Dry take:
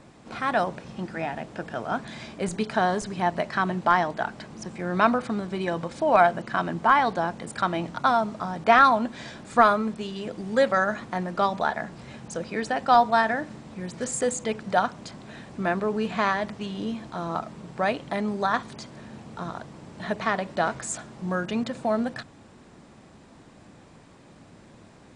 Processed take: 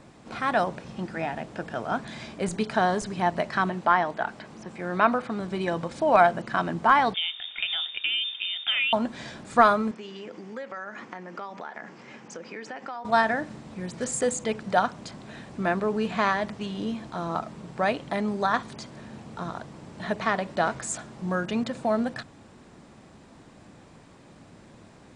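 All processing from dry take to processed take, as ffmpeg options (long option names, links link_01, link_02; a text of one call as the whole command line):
ffmpeg -i in.wav -filter_complex "[0:a]asettb=1/sr,asplit=3[link_01][link_02][link_03];[link_01]atrim=end=3.694[link_04];[link_02]atrim=start=3.69:end=5.4,asetpts=PTS-STARTPTS,afade=type=in:duration=0.004:curve=qsin,afade=type=out:start_time=1.706:duration=0.004:curve=qsin,acrossover=split=3600[link_05][link_06];[link_06]acompressor=threshold=-56dB:ratio=4:attack=1:release=60[link_07];[link_05][link_07]amix=inputs=2:normalize=0,lowshelf=frequency=220:gain=-7[link_08];[link_03]atrim=start=5.396[link_09];[link_04][link_08]acrossfade=duration=0.004:curve1=hsin:curve2=qsin[link_10];[link_10][link_09]acrossfade=duration=0.004:curve1=qsin:curve2=hsin,asettb=1/sr,asplit=3[link_11][link_12][link_13];[link_11]atrim=end=7.144[link_14];[link_12]atrim=start=7.14:end=8.93,asetpts=PTS-STARTPTS,afade=type=in:duration=0.004:curve=qsin,afade=type=out:start_time=1.786:duration=0.004:curve=qsin,acompressor=threshold=-23dB:ratio=4:attack=3.2:release=140:knee=1:detection=peak,lowpass=frequency=3200:width_type=q:width=0.5098,lowpass=frequency=3200:width_type=q:width=0.6013,lowpass=frequency=3200:width_type=q:width=0.9,lowpass=frequency=3200:width_type=q:width=2.563,afreqshift=-3800[link_15];[link_13]atrim=start=8.926[link_16];[link_14][link_15]acrossfade=duration=0.004:curve1=hsin:curve2=qsin[link_17];[link_17][link_16]acrossfade=duration=0.004:curve1=qsin:curve2=hsin,asettb=1/sr,asplit=3[link_18][link_19][link_20];[link_18]atrim=end=9.914[link_21];[link_19]atrim=start=9.91:end=13.05,asetpts=PTS-STARTPTS,afade=type=in:duration=0.004:curve=qsin,afade=type=out:start_time=3.136:duration=0.004:curve=qsin,acompressor=threshold=-32dB:ratio=6:attack=3.2:release=140:knee=1:detection=peak,highpass=270,equalizer=frequency=650:width_type=q:width=4:gain=-6,equalizer=frequency=2100:width_type=q:width=4:gain=3,equalizer=frequency=3900:width_type=q:width=4:gain=-9,lowpass=frequency=6500:width=0.5412,lowpass=frequency=6500:width=1.3066[link_22];[link_20]atrim=start=13.046[link_23];[link_21][link_22]acrossfade=duration=0.004:curve1=hsin:curve2=qsin[link_24];[link_24][link_23]acrossfade=duration=0.004:curve1=qsin:curve2=hsin" out.wav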